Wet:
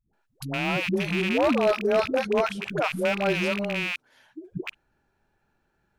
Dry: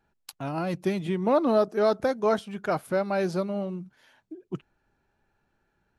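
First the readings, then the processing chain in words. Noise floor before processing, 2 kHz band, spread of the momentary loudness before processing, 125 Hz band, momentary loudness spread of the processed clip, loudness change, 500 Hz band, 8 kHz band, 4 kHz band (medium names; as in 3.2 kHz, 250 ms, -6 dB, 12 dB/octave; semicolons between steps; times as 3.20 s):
-75 dBFS, +10.5 dB, 17 LU, +1.0 dB, 14 LU, +1.5 dB, +0.5 dB, no reading, +10.0 dB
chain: rattle on loud lows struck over -40 dBFS, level -18 dBFS; phase dispersion highs, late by 135 ms, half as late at 370 Hz; overload inside the chain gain 16.5 dB; trim +1 dB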